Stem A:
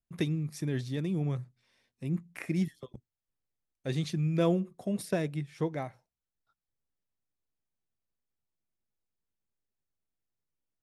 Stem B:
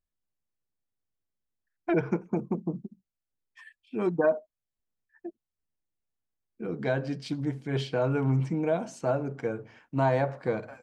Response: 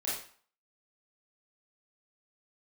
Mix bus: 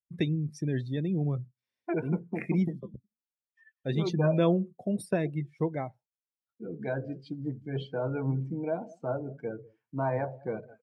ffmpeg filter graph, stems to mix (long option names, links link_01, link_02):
-filter_complex "[0:a]volume=2dB[link_01];[1:a]flanger=delay=4.3:depth=5.9:regen=84:speed=1.9:shape=triangular,volume=-0.5dB,asplit=2[link_02][link_03];[link_03]volume=-19.5dB,aecho=0:1:195:1[link_04];[link_01][link_02][link_04]amix=inputs=3:normalize=0,highpass=40,afftdn=noise_reduction=22:noise_floor=-41"